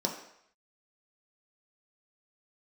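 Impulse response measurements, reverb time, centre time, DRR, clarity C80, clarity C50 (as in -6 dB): 0.70 s, 26 ms, 0.0 dB, 9.5 dB, 7.0 dB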